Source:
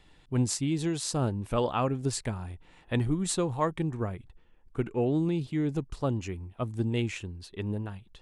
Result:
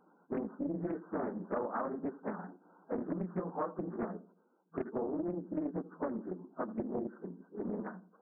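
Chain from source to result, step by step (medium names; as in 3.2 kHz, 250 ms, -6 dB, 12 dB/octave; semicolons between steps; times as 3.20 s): phase randomisation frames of 50 ms; FFT band-pass 170–1600 Hz; compression 10:1, threshold -32 dBFS, peak gain reduction 11.5 dB; on a send: filtered feedback delay 84 ms, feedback 37%, low-pass 1 kHz, level -16 dB; on the sum: loudspeaker Doppler distortion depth 0.56 ms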